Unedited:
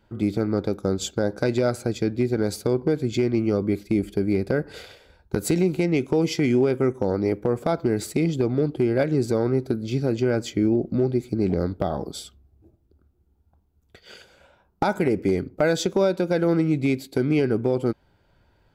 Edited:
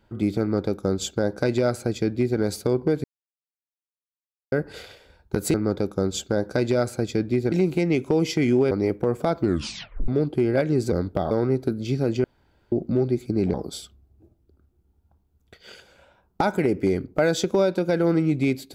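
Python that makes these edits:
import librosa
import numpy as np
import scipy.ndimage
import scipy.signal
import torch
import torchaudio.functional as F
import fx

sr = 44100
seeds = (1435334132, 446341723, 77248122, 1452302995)

y = fx.edit(x, sr, fx.duplicate(start_s=0.41, length_s=1.98, to_s=5.54),
    fx.silence(start_s=3.04, length_s=1.48),
    fx.cut(start_s=6.73, length_s=0.4),
    fx.tape_stop(start_s=7.83, length_s=0.67),
    fx.room_tone_fill(start_s=10.27, length_s=0.48),
    fx.move(start_s=11.57, length_s=0.39, to_s=9.34), tone=tone)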